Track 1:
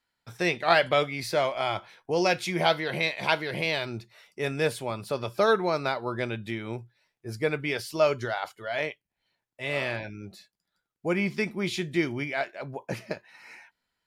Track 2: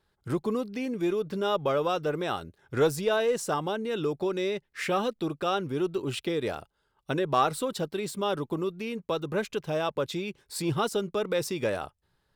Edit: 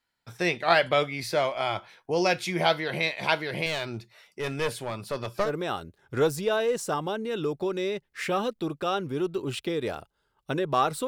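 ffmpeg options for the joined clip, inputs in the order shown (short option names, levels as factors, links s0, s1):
-filter_complex "[0:a]asettb=1/sr,asplit=3[s0][s1][s2];[s0]atrim=end=3.664[s3];[s1]atrim=start=3.66:end=5.51,asetpts=PTS-STARTPTS,afade=t=in:d=0.004:c=qsin,afade=t=out:st=1.846:d=0.004:c=qsin,aeval=exprs='clip(val(0),-1,0.0422)':c=same[s4];[s2]atrim=start=5.506[s5];[s3][s4]acrossfade=d=0.004:c1=hsin:c2=qsin[s6];[s6][s5]acrossfade=d=0.004:c1=qsin:c2=hsin,apad=whole_dur=11.07,atrim=end=11.07,atrim=end=5.51,asetpts=PTS-STARTPTS[s7];[1:a]atrim=start=2.01:end=7.67,asetpts=PTS-STARTPTS[s8];[s7][s8]acrossfade=d=0.1:c1=tri:c2=tri"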